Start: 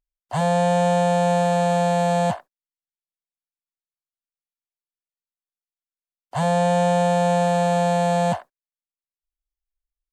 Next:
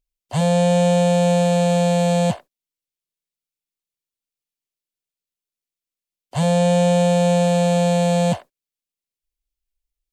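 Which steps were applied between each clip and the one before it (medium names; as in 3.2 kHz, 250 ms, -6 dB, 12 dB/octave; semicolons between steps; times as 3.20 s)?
high-order bell 1.1 kHz -9 dB; trim +5 dB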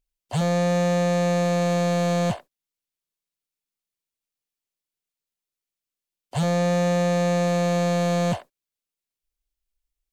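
saturation -17.5 dBFS, distortion -10 dB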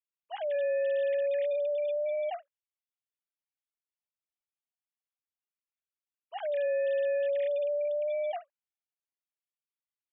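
formants replaced by sine waves; trim -8 dB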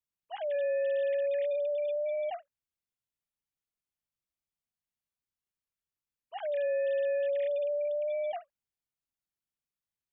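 tone controls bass +12 dB, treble 0 dB; trim -1.5 dB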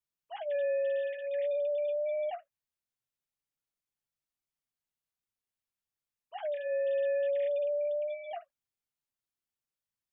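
flange 0.26 Hz, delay 6.9 ms, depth 1.9 ms, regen -42%; trim +2.5 dB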